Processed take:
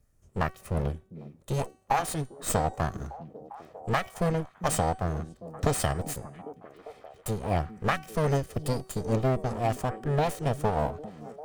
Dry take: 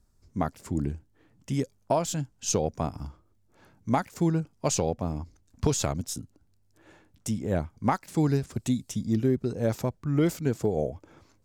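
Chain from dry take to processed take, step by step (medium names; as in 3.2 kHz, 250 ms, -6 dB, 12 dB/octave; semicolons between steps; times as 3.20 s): comb filter that takes the minimum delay 1.6 ms; formant shift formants +4 st; de-hum 378.4 Hz, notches 26; on a send: repeats whose band climbs or falls 400 ms, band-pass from 220 Hz, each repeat 0.7 oct, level -9 dB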